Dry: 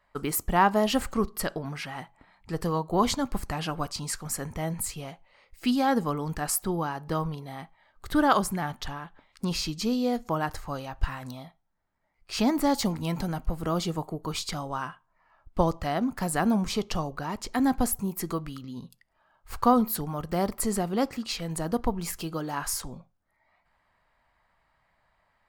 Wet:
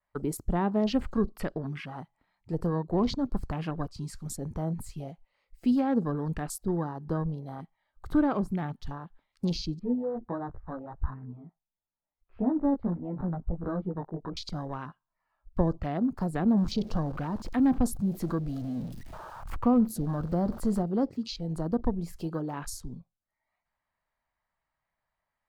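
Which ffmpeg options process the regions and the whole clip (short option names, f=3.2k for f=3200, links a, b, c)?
-filter_complex "[0:a]asettb=1/sr,asplit=3[a][b][c];[a]atrim=end=9.794[d];[b]atrim=start=9.79:end=14.37,asetpts=PTS-STARTPTS,afade=t=in:d=0.004:c=qsin,afade=t=out:st=4.576:d=0.004:c=qsin,lowpass=f=1.6k:w=0.5412,lowpass=f=1.6k:w=1.3066,flanger=delay=15.5:depth=2.8:speed=1.5[e];[c]atrim=start=14.366[f];[d][e]acrossfade=d=0.004:c1=hsin:c2=qsin[g];[g][f]acrossfade=d=0.004:c1=qsin:c2=hsin,asettb=1/sr,asplit=3[h][i][j];[h]atrim=end=16.574[k];[i]atrim=start=16.57:end=20.83,asetpts=PTS-STARTPTS,afade=t=in:d=0.004:c=qsin,afade=t=out:st=4.256:d=0.004:c=qsin,aeval=exprs='val(0)+0.5*0.0211*sgn(val(0))':c=same,bandreject=f=400:w=6.1[l];[j]atrim=start=20.826[m];[k][l]acrossfade=d=0.004:c1=hsin:c2=qsin[n];[n][m]acrossfade=d=0.004:c1=qsin:c2=hsin,afwtdn=0.0158,adynamicequalizer=threshold=0.00251:dfrequency=4400:dqfactor=1.5:tfrequency=4400:tqfactor=1.5:attack=5:release=100:ratio=0.375:range=4:mode=boostabove:tftype=bell,acrossover=split=490[o][p];[p]acompressor=threshold=-43dB:ratio=2.5[q];[o][q]amix=inputs=2:normalize=0,volume=1dB"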